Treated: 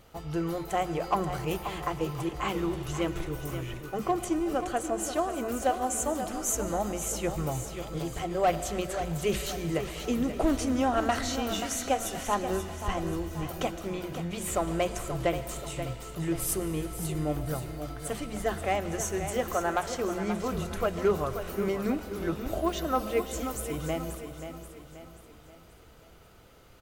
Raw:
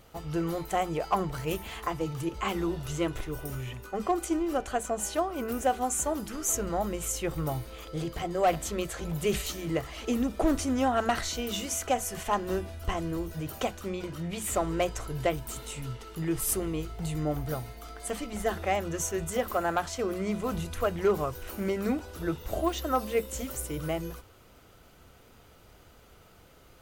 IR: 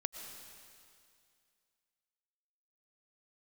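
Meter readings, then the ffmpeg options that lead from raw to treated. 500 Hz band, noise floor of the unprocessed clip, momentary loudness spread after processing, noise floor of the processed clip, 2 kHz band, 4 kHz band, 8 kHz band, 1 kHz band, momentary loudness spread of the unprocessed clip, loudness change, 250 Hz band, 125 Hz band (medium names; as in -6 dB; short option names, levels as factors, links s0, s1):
+0.5 dB, -56 dBFS, 8 LU, -53 dBFS, 0.0 dB, 0.0 dB, -1.0 dB, +0.5 dB, 9 LU, 0.0 dB, +0.5 dB, +0.5 dB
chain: -filter_complex "[0:a]aecho=1:1:532|1064|1596|2128|2660:0.335|0.147|0.0648|0.0285|0.0126,asplit=2[s0][s1];[1:a]atrim=start_sample=2205,highshelf=f=9100:g=-6.5[s2];[s1][s2]afir=irnorm=-1:irlink=0,volume=0.794[s3];[s0][s3]amix=inputs=2:normalize=0,volume=0.562"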